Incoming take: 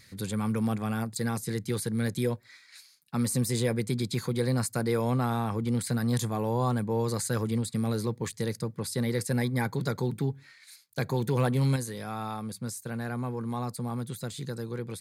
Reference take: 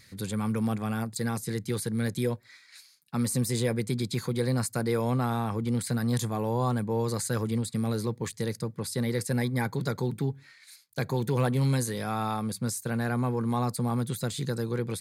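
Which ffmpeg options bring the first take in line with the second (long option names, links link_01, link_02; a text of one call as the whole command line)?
ffmpeg -i in.wav -af "asetnsamples=nb_out_samples=441:pad=0,asendcmd='11.76 volume volume 5dB',volume=0dB" out.wav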